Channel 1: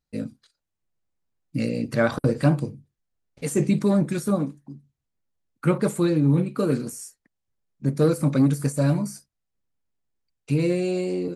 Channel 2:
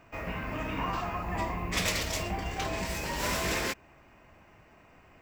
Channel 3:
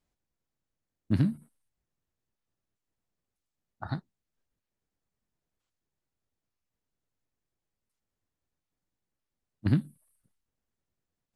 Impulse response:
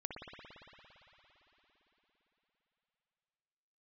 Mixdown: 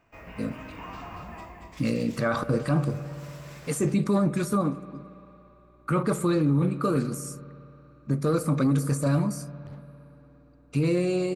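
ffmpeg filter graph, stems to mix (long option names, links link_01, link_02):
-filter_complex "[0:a]equalizer=frequency=1200:width_type=o:width=0.34:gain=10,aeval=exprs='val(0)+0.00141*(sin(2*PI*60*n/s)+sin(2*PI*2*60*n/s)/2+sin(2*PI*3*60*n/s)/3+sin(2*PI*4*60*n/s)/4+sin(2*PI*5*60*n/s)/5)':channel_layout=same,adelay=250,volume=-2dB,asplit=2[link_01][link_02];[link_02]volume=-13.5dB[link_03];[1:a]volume=-8.5dB,afade=type=out:start_time=1.2:duration=0.55:silence=0.281838,asplit=2[link_04][link_05];[link_05]volume=-4.5dB[link_06];[2:a]volume=32dB,asoftclip=hard,volume=-32dB,volume=-13dB[link_07];[3:a]atrim=start_sample=2205[link_08];[link_03][link_08]afir=irnorm=-1:irlink=0[link_09];[link_06]aecho=0:1:230:1[link_10];[link_01][link_04][link_07][link_09][link_10]amix=inputs=5:normalize=0,alimiter=limit=-15.5dB:level=0:latency=1:release=13"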